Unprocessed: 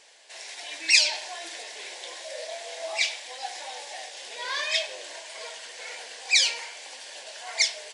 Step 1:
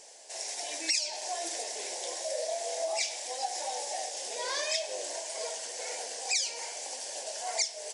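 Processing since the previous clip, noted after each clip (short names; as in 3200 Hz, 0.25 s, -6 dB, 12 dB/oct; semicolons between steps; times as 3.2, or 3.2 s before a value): band shelf 2100 Hz -12.5 dB 2.3 oct; compressor 6:1, threshold -35 dBFS, peak gain reduction 15.5 dB; low shelf 480 Hz -4.5 dB; gain +7.5 dB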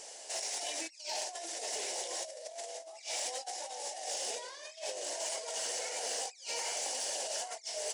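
negative-ratio compressor -39 dBFS, ratio -0.5; small resonant body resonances 1300/2900 Hz, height 8 dB, ringing for 30 ms; soft clip -26 dBFS, distortion -24 dB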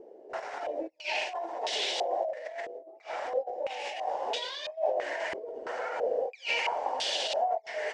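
stepped low-pass 3 Hz 380–3500 Hz; gain +5.5 dB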